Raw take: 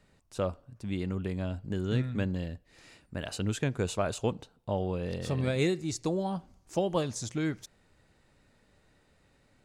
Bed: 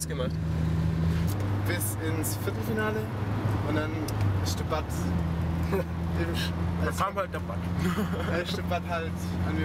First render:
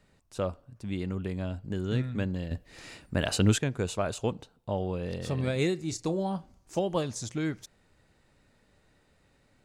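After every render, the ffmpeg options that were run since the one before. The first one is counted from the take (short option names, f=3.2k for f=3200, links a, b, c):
-filter_complex "[0:a]asettb=1/sr,asplit=3[a][b][c];[a]atrim=end=5.844[d];[b]atrim=start=5.84:end=6.8,asetpts=PTS-STARTPTS,afade=t=in:d=0.004:c=qsin,afade=t=out:st=0.956:d=0.004:c=qsin,asplit=2[e][f];[f]adelay=31,volume=-12.5dB[g];[e][g]amix=inputs=2:normalize=0,atrim=end_sample=42336[h];[c]atrim=start=6.796[i];[d][h]acrossfade=d=0.004:c1=hsin:c2=qsin[j];[j][i]acrossfade=d=0.004:c1=qsin:c2=hsin,asplit=3[k][l][m];[k]atrim=end=2.512[n];[l]atrim=start=2.508:end=3.582,asetpts=PTS-STARTPTS,volume=8.5dB[o];[m]atrim=start=3.578[p];[n][o]acrossfade=d=0.004:c1=hsin:c2=hsin[q];[q][p]acrossfade=d=0.004:c1=hsin:c2=hsin"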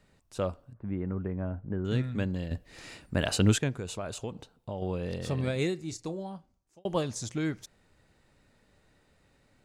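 -filter_complex "[0:a]asettb=1/sr,asplit=3[a][b][c];[a]atrim=end=0.734[d];[b]atrim=start=0.73:end=1.85,asetpts=PTS-STARTPTS,afade=t=in:d=0.004:c=qsin,afade=t=out:st=1.116:d=0.004:c=qsin,lowpass=f=1.7k:w=0.5412,lowpass=f=1.7k:w=1.3066[e];[c]atrim=start=1.846[f];[d][e]acrossfade=d=0.004:c1=hsin:c2=qsin[g];[g][f]acrossfade=d=0.004:c1=qsin:c2=hsin,asettb=1/sr,asplit=3[h][i][j];[h]atrim=end=3.734[k];[i]atrim=start=3.73:end=4.82,asetpts=PTS-STARTPTS,afade=t=in:d=0.004:c=qsin,afade=t=out:st=1.086:d=0.004:c=qsin,acompressor=threshold=-34dB:ratio=2.5:attack=3.2:release=140:knee=1:detection=peak[l];[j]atrim=start=4.816[m];[k][l]acrossfade=d=0.004:c1=hsin:c2=qsin[n];[n][m]acrossfade=d=0.004:c1=qsin:c2=hsin,asplit=2[o][p];[o]atrim=end=6.85,asetpts=PTS-STARTPTS,afade=t=out:st=5.32:d=1.53[q];[p]atrim=start=6.85,asetpts=PTS-STARTPTS,afade=t=in:d=0.004:c=hsin[r];[q][r]concat=n=2:v=0:a=1"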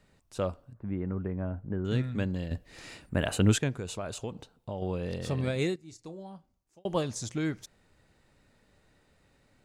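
-filter_complex "[0:a]asettb=1/sr,asplit=3[a][b][c];[a]atrim=end=3.094[d];[b]atrim=start=3.09:end=3.51,asetpts=PTS-STARTPTS,afade=t=in:d=0.004:c=qsin,afade=t=out:st=0.416:d=0.004:c=qsin,equalizer=f=5k:w=1.9:g=-13[e];[c]atrim=start=3.506[f];[d][e]acrossfade=d=0.004:c1=hsin:c2=qsin[g];[g][f]acrossfade=d=0.004:c1=qsin:c2=hsin,asplit=2[h][i];[h]atrim=end=5.76,asetpts=PTS-STARTPTS,afade=t=out:st=5.756:d=0.004:c=hsin:silence=0.188365[j];[i]atrim=start=5.76,asetpts=PTS-STARTPTS,afade=t=in:d=1.18:silence=0.188365[k];[j][k]concat=n=2:v=0:a=1"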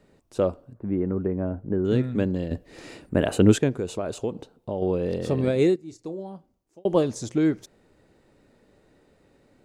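-af "equalizer=f=370:w=0.67:g=11.5"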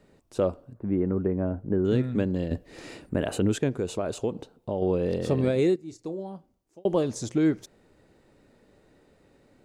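-af "alimiter=limit=-14dB:level=0:latency=1:release=185"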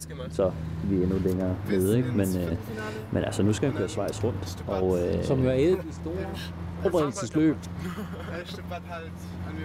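-filter_complex "[1:a]volume=-6.5dB[a];[0:a][a]amix=inputs=2:normalize=0"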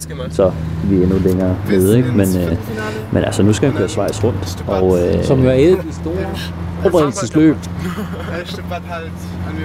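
-af "volume=12dB,alimiter=limit=-1dB:level=0:latency=1"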